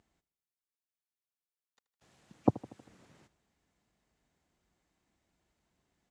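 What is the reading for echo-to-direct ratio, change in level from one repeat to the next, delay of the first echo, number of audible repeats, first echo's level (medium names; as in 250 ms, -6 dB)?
-17.0 dB, -4.5 dB, 79 ms, 4, -19.0 dB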